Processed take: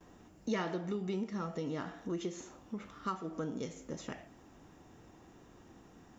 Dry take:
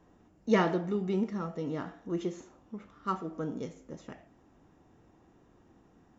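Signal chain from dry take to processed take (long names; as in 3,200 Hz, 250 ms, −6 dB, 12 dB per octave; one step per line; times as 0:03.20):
noise gate with hold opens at −59 dBFS
high-shelf EQ 2,200 Hz +8 dB
downward compressor 3 to 1, threshold −40 dBFS, peak gain reduction 15.5 dB
level +3.5 dB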